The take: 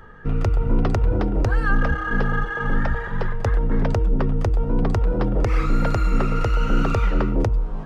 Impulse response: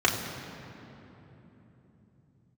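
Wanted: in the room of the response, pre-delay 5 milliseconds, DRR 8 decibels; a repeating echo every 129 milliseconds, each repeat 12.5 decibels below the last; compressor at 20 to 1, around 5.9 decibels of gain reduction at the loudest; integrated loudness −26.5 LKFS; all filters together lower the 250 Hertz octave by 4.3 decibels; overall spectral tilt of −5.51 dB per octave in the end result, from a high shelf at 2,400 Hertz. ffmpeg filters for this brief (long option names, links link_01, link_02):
-filter_complex "[0:a]equalizer=frequency=250:width_type=o:gain=-6,highshelf=frequency=2400:gain=6.5,acompressor=threshold=-20dB:ratio=20,aecho=1:1:129|258|387:0.237|0.0569|0.0137,asplit=2[link_01][link_02];[1:a]atrim=start_sample=2205,adelay=5[link_03];[link_02][link_03]afir=irnorm=-1:irlink=0,volume=-23.5dB[link_04];[link_01][link_04]amix=inputs=2:normalize=0,volume=0.5dB"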